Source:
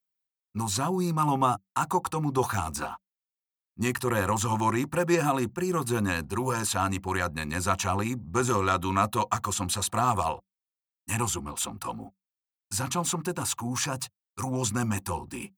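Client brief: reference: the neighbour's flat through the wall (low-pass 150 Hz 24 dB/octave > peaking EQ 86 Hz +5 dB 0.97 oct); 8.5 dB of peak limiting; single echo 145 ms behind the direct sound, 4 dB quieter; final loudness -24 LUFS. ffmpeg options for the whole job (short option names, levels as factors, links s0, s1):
-af "alimiter=limit=0.119:level=0:latency=1,lowpass=f=150:w=0.5412,lowpass=f=150:w=1.3066,equalizer=f=86:t=o:w=0.97:g=5,aecho=1:1:145:0.631,volume=3.35"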